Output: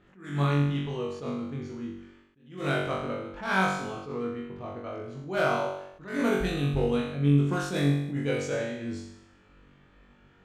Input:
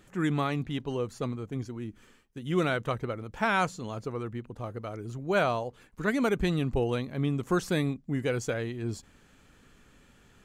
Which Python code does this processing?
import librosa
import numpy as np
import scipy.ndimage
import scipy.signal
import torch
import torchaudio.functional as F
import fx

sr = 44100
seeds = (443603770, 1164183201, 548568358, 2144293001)

p1 = fx.clip_asym(x, sr, top_db=-20.5, bottom_db=-16.5)
p2 = fx.env_lowpass(p1, sr, base_hz=2600.0, full_db=-22.5)
p3 = p2 + fx.room_flutter(p2, sr, wall_m=3.6, rt60_s=0.8, dry=0)
p4 = fx.attack_slew(p3, sr, db_per_s=120.0)
y = p4 * 10.0 ** (-3.5 / 20.0)